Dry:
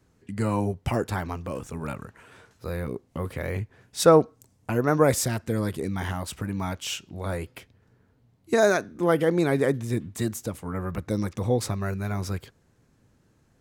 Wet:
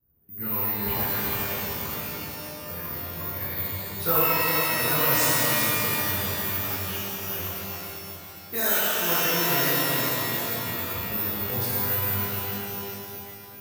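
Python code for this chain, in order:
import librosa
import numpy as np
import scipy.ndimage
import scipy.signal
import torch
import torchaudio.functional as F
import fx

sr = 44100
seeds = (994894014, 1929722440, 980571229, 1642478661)

p1 = x + fx.echo_feedback(x, sr, ms=401, feedback_pct=54, wet_db=-6, dry=0)
p2 = fx.env_lowpass(p1, sr, base_hz=640.0, full_db=-16.5)
p3 = fx.tone_stack(p2, sr, knobs='5-5-5')
p4 = (np.kron(scipy.signal.resample_poly(p3, 1, 3), np.eye(3)[0]) * 3)[:len(p3)]
y = fx.rev_shimmer(p4, sr, seeds[0], rt60_s=2.0, semitones=12, shimmer_db=-2, drr_db=-9.5)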